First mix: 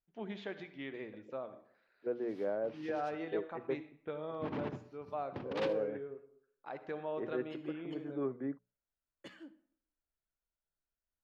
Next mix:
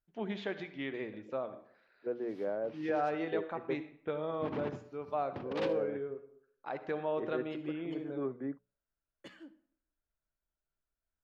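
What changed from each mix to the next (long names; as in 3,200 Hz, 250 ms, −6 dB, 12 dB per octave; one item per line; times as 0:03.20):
first voice +5.0 dB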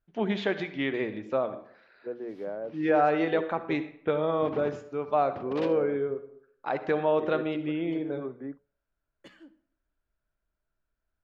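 first voice +9.5 dB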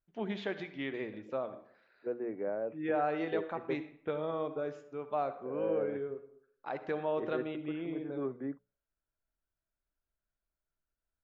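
first voice −8.5 dB
background: muted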